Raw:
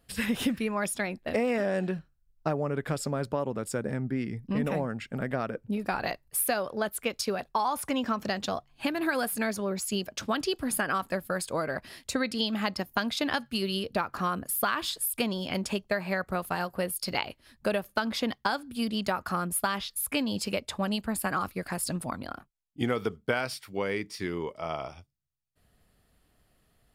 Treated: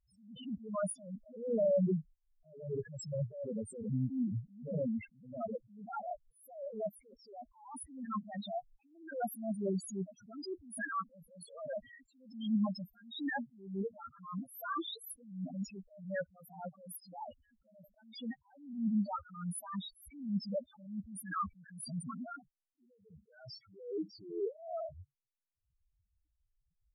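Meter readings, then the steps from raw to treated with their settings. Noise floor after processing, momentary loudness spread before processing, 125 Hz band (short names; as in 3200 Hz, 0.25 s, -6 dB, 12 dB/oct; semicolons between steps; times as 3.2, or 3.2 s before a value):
-81 dBFS, 6 LU, -5.5 dB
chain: gate -52 dBFS, range -8 dB; loudest bins only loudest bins 2; attack slew limiter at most 100 dB/s; gain +3 dB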